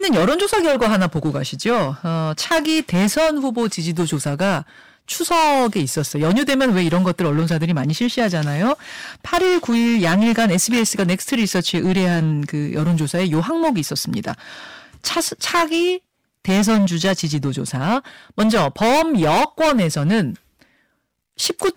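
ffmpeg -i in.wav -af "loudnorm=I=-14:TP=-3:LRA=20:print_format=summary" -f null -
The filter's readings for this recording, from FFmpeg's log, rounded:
Input Integrated:    -18.4 LUFS
Input True Peak:     -10.5 dBTP
Input LRA:             2.5 LU
Input Threshold:     -28.9 LUFS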